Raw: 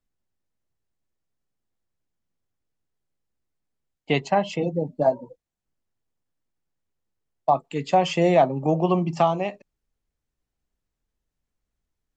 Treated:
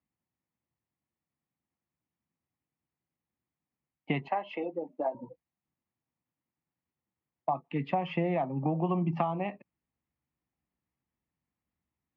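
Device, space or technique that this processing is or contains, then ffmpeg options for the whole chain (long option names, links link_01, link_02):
bass amplifier: -filter_complex "[0:a]acompressor=threshold=-24dB:ratio=6,highpass=frequency=79:width=0.5412,highpass=frequency=79:width=1.3066,equalizer=frequency=99:width_type=q:width=4:gain=-7,equalizer=frequency=430:width_type=q:width=4:gain=-9,equalizer=frequency=610:width_type=q:width=4:gain=-6,equalizer=frequency=1500:width_type=q:width=4:gain=-8,lowpass=frequency=2400:width=0.5412,lowpass=frequency=2400:width=1.3066,asettb=1/sr,asplit=3[link_01][link_02][link_03];[link_01]atrim=end=4.284[link_04];[link_02]atrim=start=4.28:end=5.15,asetpts=PTS-STARTPTS,afade=type=in:duration=0.004:curve=qsin,afade=type=out:start_time=0.866:duration=0.004:curve=qsin,highpass=frequency=330:width=0.5412,highpass=frequency=330:width=1.3066[link_05];[link_03]atrim=start=5.146[link_06];[link_04][link_05]acrossfade=duration=0.004:curve1=hsin:curve2=qsin[link_07];[link_07][link_06]acrossfade=duration=0.004:curve1=qsin:curve2=hsin,volume=1dB"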